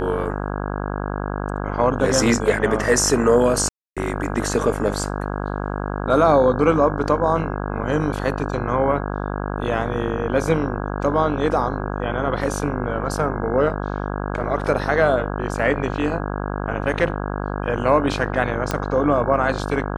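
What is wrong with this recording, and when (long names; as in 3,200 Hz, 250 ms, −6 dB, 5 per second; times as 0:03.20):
mains buzz 50 Hz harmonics 33 −26 dBFS
0:03.69–0:03.97: drop-out 276 ms
0:18.71: click −7 dBFS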